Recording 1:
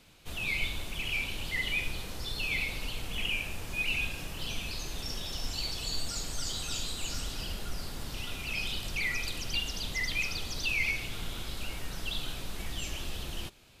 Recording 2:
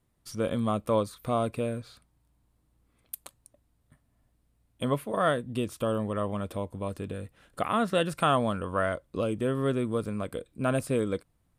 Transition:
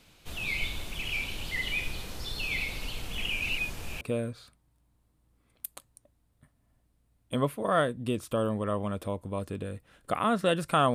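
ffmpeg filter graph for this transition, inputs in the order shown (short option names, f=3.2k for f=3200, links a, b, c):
-filter_complex "[0:a]apad=whole_dur=10.94,atrim=end=10.94,asplit=2[a][b];[a]atrim=end=3.422[c];[b]atrim=start=3.418:end=4.012,asetpts=PTS-STARTPTS,areverse[d];[1:a]atrim=start=1.498:end=8.43[e];[c][d]acrossfade=d=0.004:c1=hsin:c2=hsin[f];[f][e]acrossfade=d=0.004:c1=hsin:c2=hsin"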